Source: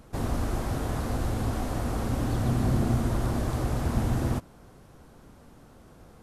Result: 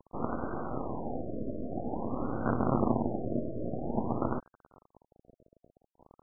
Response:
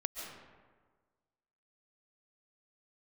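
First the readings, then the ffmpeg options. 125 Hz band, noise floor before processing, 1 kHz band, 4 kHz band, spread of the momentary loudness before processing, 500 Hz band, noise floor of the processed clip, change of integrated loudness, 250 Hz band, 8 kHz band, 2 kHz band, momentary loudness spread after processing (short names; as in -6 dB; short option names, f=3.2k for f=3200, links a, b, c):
-11.0 dB, -53 dBFS, -1.0 dB, under -40 dB, 5 LU, 0.0 dB, under -85 dBFS, -5.0 dB, -2.5 dB, under -35 dB, -9.0 dB, 9 LU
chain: -filter_complex "[0:a]acrossover=split=160 3400:gain=0.0708 1 0.0794[a][b][c];[a][b][c]amix=inputs=3:normalize=0,acrusher=bits=5:dc=4:mix=0:aa=0.000001,afftfilt=real='re*lt(b*sr/1024,660*pow(1600/660,0.5+0.5*sin(2*PI*0.5*pts/sr)))':imag='im*lt(b*sr/1024,660*pow(1600/660,0.5+0.5*sin(2*PI*0.5*pts/sr)))':win_size=1024:overlap=0.75,volume=3dB"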